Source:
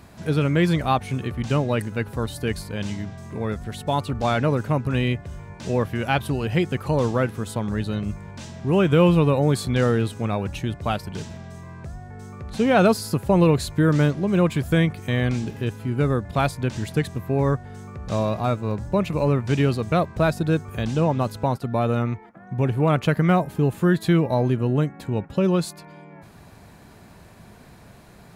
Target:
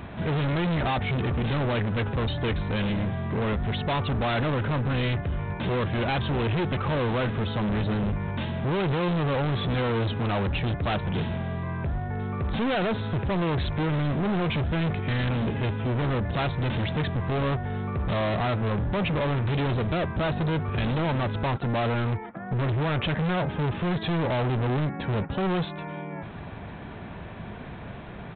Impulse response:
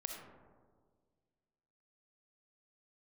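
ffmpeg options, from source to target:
-af "alimiter=limit=0.168:level=0:latency=1:release=15,aresample=8000,asoftclip=type=hard:threshold=0.0237,aresample=44100,volume=2.66"

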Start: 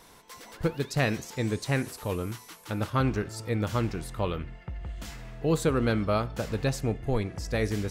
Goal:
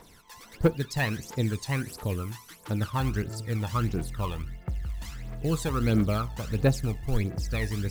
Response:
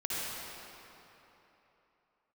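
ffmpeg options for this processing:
-af "acrusher=bits=5:mode=log:mix=0:aa=0.000001,aphaser=in_gain=1:out_gain=1:delay=1.2:decay=0.66:speed=1.5:type=triangular,volume=0.668"

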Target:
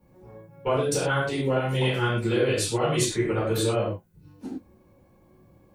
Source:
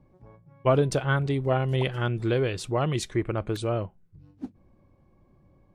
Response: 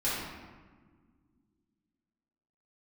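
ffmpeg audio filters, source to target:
-filter_complex "[0:a]highpass=f=170:p=1,aemphasis=mode=production:type=50fm,acompressor=threshold=0.0501:ratio=5[s0];[1:a]atrim=start_sample=2205,afade=t=out:st=0.27:d=0.01,atrim=end_sample=12348,asetrate=74970,aresample=44100[s1];[s0][s1]afir=irnorm=-1:irlink=0,volume=1.26"

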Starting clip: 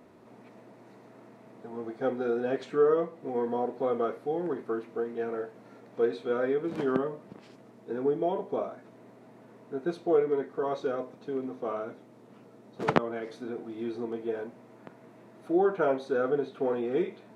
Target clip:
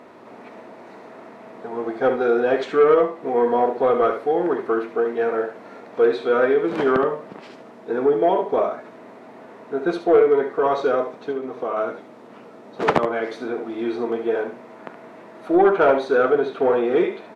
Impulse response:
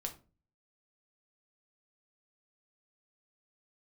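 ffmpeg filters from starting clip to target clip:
-filter_complex "[0:a]asplit=3[s0][s1][s2];[s0]afade=t=out:st=11.31:d=0.02[s3];[s1]acompressor=threshold=0.02:ratio=6,afade=t=in:st=11.31:d=0.02,afade=t=out:st=11.76:d=0.02[s4];[s2]afade=t=in:st=11.76:d=0.02[s5];[s3][s4][s5]amix=inputs=3:normalize=0,asplit=2[s6][s7];[s7]highpass=f=720:p=1,volume=10,asoftclip=type=tanh:threshold=0.596[s8];[s6][s8]amix=inputs=2:normalize=0,lowpass=f=2400:p=1,volume=0.501,asplit=2[s9][s10];[s10]aecho=0:1:71:0.335[s11];[s9][s11]amix=inputs=2:normalize=0,volume=1.19"

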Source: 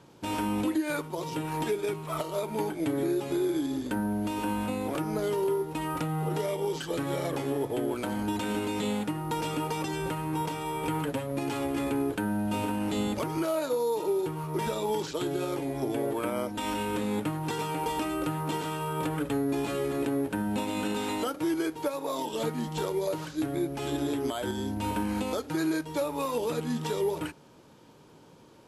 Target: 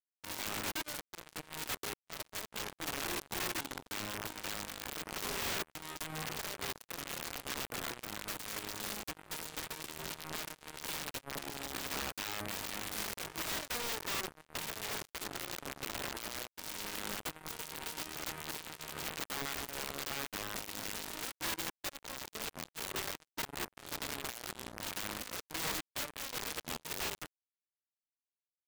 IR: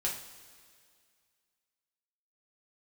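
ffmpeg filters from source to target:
-filter_complex "[0:a]asplit=2[s0][s1];[1:a]atrim=start_sample=2205[s2];[s1][s2]afir=irnorm=-1:irlink=0,volume=0.0891[s3];[s0][s3]amix=inputs=2:normalize=0,acrusher=bits=3:mix=0:aa=0.5,aeval=exprs='(mod(17.8*val(0)+1,2)-1)/17.8':c=same,volume=0.668"

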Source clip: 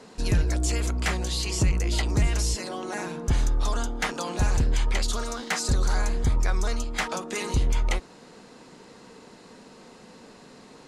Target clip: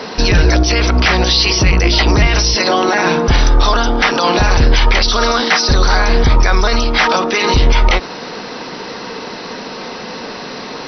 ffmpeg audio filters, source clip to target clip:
-af "lowshelf=f=350:g=-9.5,alimiter=level_in=21.1:limit=0.891:release=50:level=0:latency=1,volume=0.841" -ar 32000 -c:a mp2 -b:a 48k

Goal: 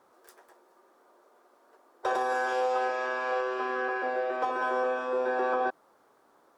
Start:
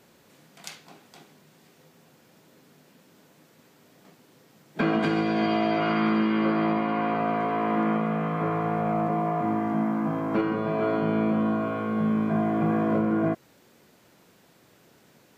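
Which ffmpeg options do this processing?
-af "asetrate=103194,aresample=44100,highshelf=f=1800:t=q:w=1.5:g=-9.5,volume=0.596"

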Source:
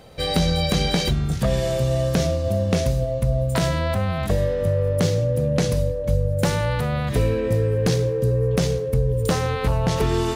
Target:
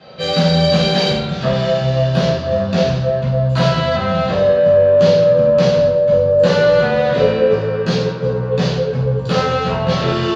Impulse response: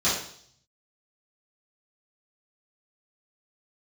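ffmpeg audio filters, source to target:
-filter_complex "[0:a]highpass=150,equalizer=f=320:t=q:w=4:g=-4,equalizer=f=550:t=q:w=4:g=7,equalizer=f=930:t=q:w=4:g=5,equalizer=f=1500:t=q:w=4:g=7,equalizer=f=2800:t=q:w=4:g=7,equalizer=f=4300:t=q:w=4:g=5,lowpass=f=4800:w=0.5412,lowpass=f=4800:w=1.3066,asoftclip=type=tanh:threshold=0.188,asettb=1/sr,asplit=3[s0][s1][s2];[s0]atrim=end=6.104[s3];[s1]atrim=start=6.1:end=7.55,asetpts=PTS-STARTPTS,afade=t=in:d=0.004:c=qsin,afade=t=out:st=1.446:d=0.004:c=qsin,equalizer=f=470:w=2.9:g=9[s4];[s2]atrim=start=7.546[s5];[s3][s4]acrossfade=d=0.004:c1=hsin:c2=qsin[s6];[s6][s5]acrossfade=d=0.004:c1=qsin:c2=hsin,asplit=2[s7][s8];[s8]adelay=169,lowpass=f=2600:p=1,volume=0.299,asplit=2[s9][s10];[s10]adelay=169,lowpass=f=2600:p=1,volume=0.48,asplit=2[s11][s12];[s12]adelay=169,lowpass=f=2600:p=1,volume=0.48,asplit=2[s13][s14];[s14]adelay=169,lowpass=f=2600:p=1,volume=0.48,asplit=2[s15][s16];[s16]adelay=169,lowpass=f=2600:p=1,volume=0.48[s17];[s7][s9][s11][s13][s15][s17]amix=inputs=6:normalize=0[s18];[1:a]atrim=start_sample=2205,afade=t=out:st=0.23:d=0.01,atrim=end_sample=10584[s19];[s18][s19]afir=irnorm=-1:irlink=0,volume=0.376"

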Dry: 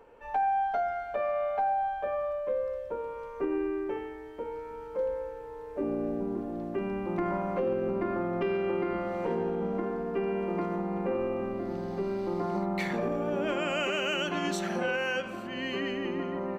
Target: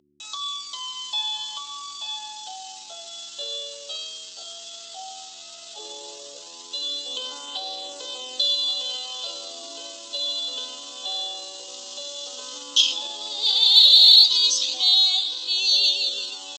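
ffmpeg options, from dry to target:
-af "highshelf=f=1800:t=q:w=3:g=10.5,aresample=11025,acrusher=bits=6:mix=0:aa=0.000001,aresample=44100,flanger=delay=0.1:depth=7.7:regen=-42:speed=0.13:shape=sinusoidal,aeval=exprs='val(0)+0.00708*(sin(2*PI*50*n/s)+sin(2*PI*2*50*n/s)/2+sin(2*PI*3*50*n/s)/3+sin(2*PI*4*50*n/s)/4+sin(2*PI*5*50*n/s)/5)':c=same,highpass=220,bandreject=f=1600:w=6.8,asetrate=64194,aresample=44100,atempo=0.686977,equalizer=f=1200:w=0.35:g=8.5,aexciter=amount=13.2:drive=3.1:freq=2800,volume=0.211"

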